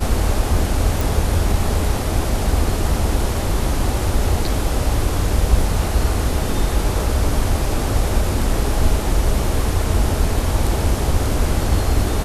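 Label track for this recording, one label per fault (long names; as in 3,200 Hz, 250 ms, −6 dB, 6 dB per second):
1.010000	1.010000	click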